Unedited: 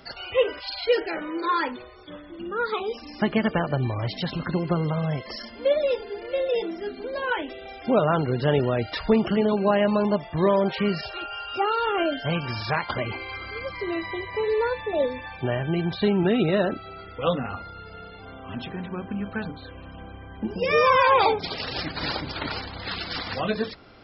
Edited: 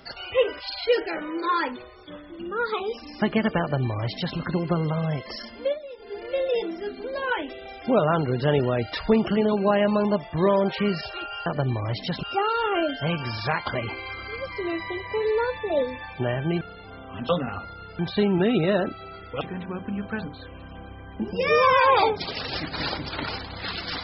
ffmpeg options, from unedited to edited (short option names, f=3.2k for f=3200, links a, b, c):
-filter_complex "[0:a]asplit=9[a][b][c][d][e][f][g][h][i];[a]atrim=end=5.79,asetpts=PTS-STARTPTS,afade=t=out:st=5.52:d=0.27:c=qsin:silence=0.158489[j];[b]atrim=start=5.79:end=5.97,asetpts=PTS-STARTPTS,volume=-16dB[k];[c]atrim=start=5.97:end=11.462,asetpts=PTS-STARTPTS,afade=t=in:d=0.27:c=qsin:silence=0.158489[l];[d]atrim=start=3.598:end=4.372[m];[e]atrim=start=11.458:end=15.842[n];[f]atrim=start=17.958:end=18.642[o];[g]atrim=start=17.258:end=17.962[p];[h]atrim=start=15.838:end=17.262[q];[i]atrim=start=18.638[r];[j][k][l]concat=n=3:v=0:a=1[s];[s][m]acrossfade=d=0.004:c1=hsin:c2=hsin[t];[t][n]acrossfade=d=0.004:c1=hsin:c2=hsin[u];[u][o]acrossfade=d=0.004:c1=hsin:c2=hsin[v];[v][p]acrossfade=d=0.004:c1=hsin:c2=hsin[w];[w][q]acrossfade=d=0.004:c1=hsin:c2=hsin[x];[x][r]acrossfade=d=0.004:c1=hsin:c2=hsin"